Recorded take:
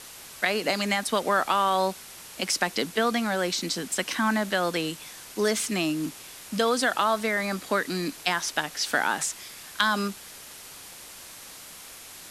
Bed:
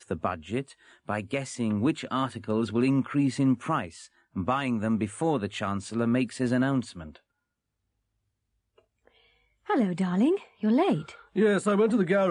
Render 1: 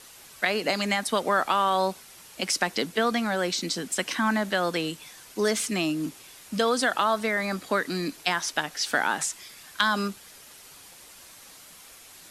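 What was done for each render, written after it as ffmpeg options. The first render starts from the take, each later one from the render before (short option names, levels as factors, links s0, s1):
-af "afftdn=nr=6:nf=-45"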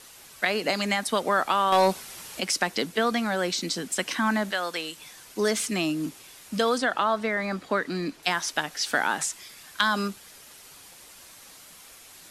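-filter_complex "[0:a]asettb=1/sr,asplit=3[s0][s1][s2];[s0]atrim=end=1.724[s3];[s1]atrim=start=1.72:end=2.4,asetpts=PTS-STARTPTS,afade=t=in:d=0.004:c=qsin,afade=t=out:st=0.676:d=0.004:c=qsin,aeval=exprs='0.237*sin(PI/2*1.41*val(0)/0.237)':c=same[s4];[s2]atrim=start=2.396[s5];[s3][s4]acrossfade=d=0.004:c1=hsin:c2=qsin[s6];[s6][s5]acrossfade=d=0.004:c1=qsin:c2=hsin,asettb=1/sr,asplit=3[s7][s8][s9];[s7]atrim=end=4.514[s10];[s8]atrim=start=4.51:end=4.97,asetpts=PTS-STARTPTS,afade=t=in:d=0.004:c=qsin,afade=t=out:st=0.456:d=0.004:c=qsin,highpass=f=850:p=1[s11];[s9]atrim=start=4.966[s12];[s10][s11]acrossfade=d=0.004:c1=hsin:c2=qsin[s13];[s13][s12]acrossfade=d=0.004:c1=qsin:c2=hsin,asettb=1/sr,asplit=3[s14][s15][s16];[s14]atrim=end=6.784[s17];[s15]atrim=start=6.78:end=8.23,asetpts=PTS-STARTPTS,afade=t=in:d=0.004:c=qsin,afade=t=out:st=1.446:d=0.004:c=qsin,aemphasis=mode=reproduction:type=50kf[s18];[s16]atrim=start=8.226[s19];[s17][s18]acrossfade=d=0.004:c1=hsin:c2=qsin[s20];[s20][s19]acrossfade=d=0.004:c1=qsin:c2=hsin"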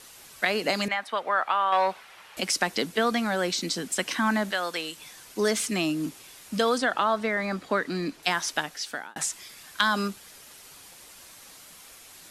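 -filter_complex "[0:a]asettb=1/sr,asplit=3[s0][s1][s2];[s0]atrim=end=0.884[s3];[s1]atrim=start=0.88:end=2.37,asetpts=PTS-STARTPTS,afade=t=in:d=0.004:c=qsin,afade=t=out:st=1.486:d=0.004:c=qsin,acrossover=split=570 3200:gain=0.158 1 0.112[s4][s5][s6];[s4][s5][s6]amix=inputs=3:normalize=0[s7];[s2]atrim=start=2.366[s8];[s3][s7]acrossfade=d=0.004:c1=hsin:c2=qsin[s9];[s9][s8]acrossfade=d=0.004:c1=qsin:c2=hsin,asplit=2[s10][s11];[s10]atrim=end=9.16,asetpts=PTS-STARTPTS,afade=t=out:st=8.54:d=0.62[s12];[s11]atrim=start=9.16,asetpts=PTS-STARTPTS,afade=t=in:d=0.004:c=hsin[s13];[s12][s13]concat=n=2:v=0:a=1"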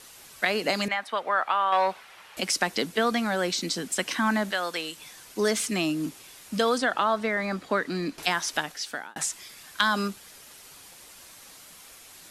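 -filter_complex "[0:a]asettb=1/sr,asplit=3[s0][s1][s2];[s0]atrim=end=8.184[s3];[s1]atrim=start=8.18:end=8.72,asetpts=PTS-STARTPTS,afade=t=in:d=0.004:c=qsin,afade=t=out:st=0.536:d=0.004:c=qsin,acompressor=mode=upward:threshold=0.0355:ratio=2.5:attack=3.2:release=140:knee=2.83:detection=peak[s4];[s2]atrim=start=8.716[s5];[s3][s4]acrossfade=d=0.004:c1=hsin:c2=qsin[s6];[s6][s5]acrossfade=d=0.004:c1=qsin:c2=hsin"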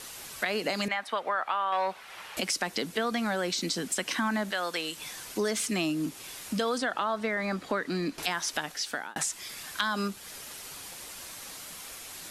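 -filter_complex "[0:a]asplit=2[s0][s1];[s1]alimiter=limit=0.133:level=0:latency=1,volume=0.891[s2];[s0][s2]amix=inputs=2:normalize=0,acompressor=threshold=0.0224:ratio=2"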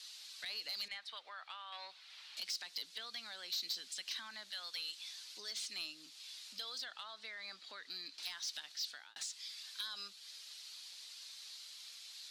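-af "bandpass=f=4200:t=q:w=3.3:csg=0,asoftclip=type=tanh:threshold=0.0211"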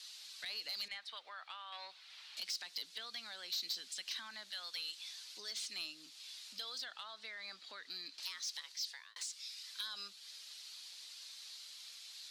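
-filter_complex "[0:a]asettb=1/sr,asplit=3[s0][s1][s2];[s0]atrim=end=8.204[s3];[s1]atrim=start=8.2:end=9.7,asetpts=PTS-STARTPTS,afade=t=in:d=0.004:c=qsin,afade=t=out:st=1.496:d=0.004:c=qsin,afreqshift=230[s4];[s2]atrim=start=9.696[s5];[s3][s4]acrossfade=d=0.004:c1=hsin:c2=qsin[s6];[s6][s5]acrossfade=d=0.004:c1=qsin:c2=hsin"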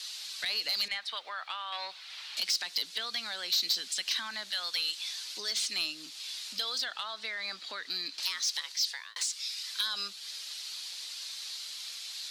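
-af "volume=3.55"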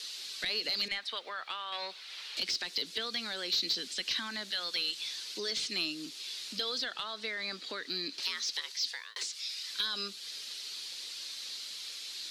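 -filter_complex "[0:a]acrossover=split=5400[s0][s1];[s1]acompressor=threshold=0.00447:ratio=4:attack=1:release=60[s2];[s0][s2]amix=inputs=2:normalize=0,lowshelf=f=560:t=q:w=1.5:g=8"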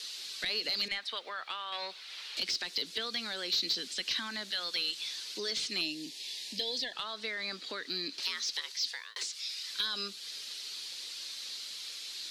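-filter_complex "[0:a]asettb=1/sr,asplit=3[s0][s1][s2];[s0]atrim=end=5.814[s3];[s1]atrim=start=5.81:end=6.93,asetpts=PTS-STARTPTS,afade=t=in:d=0.004:c=qsin,afade=t=out:st=1.116:d=0.004:c=qsin,asuperstop=centerf=1300:order=20:qfactor=2.1[s4];[s2]atrim=start=6.926[s5];[s3][s4]acrossfade=d=0.004:c1=hsin:c2=qsin[s6];[s6][s5]acrossfade=d=0.004:c1=qsin:c2=hsin"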